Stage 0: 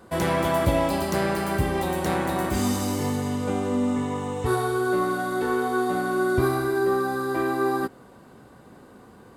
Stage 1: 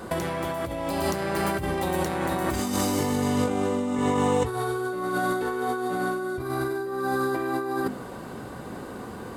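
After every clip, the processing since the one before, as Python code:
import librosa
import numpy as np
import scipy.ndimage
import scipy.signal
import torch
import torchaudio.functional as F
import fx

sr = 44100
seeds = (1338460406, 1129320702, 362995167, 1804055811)

y = fx.hum_notches(x, sr, base_hz=50, count=5)
y = fx.over_compress(y, sr, threshold_db=-32.0, ratio=-1.0)
y = y * 10.0 ** (5.0 / 20.0)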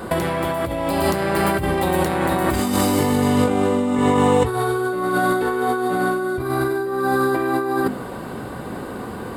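y = fx.peak_eq(x, sr, hz=6100.0, db=-9.5, octaves=0.41)
y = y * 10.0 ** (7.0 / 20.0)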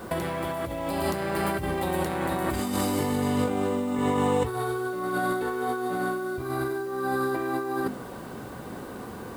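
y = fx.quant_dither(x, sr, seeds[0], bits=8, dither='triangular')
y = y * 10.0 ** (-8.0 / 20.0)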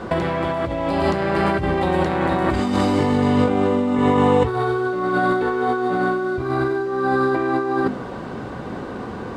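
y = fx.air_absorb(x, sr, metres=130.0)
y = y * 10.0 ** (8.5 / 20.0)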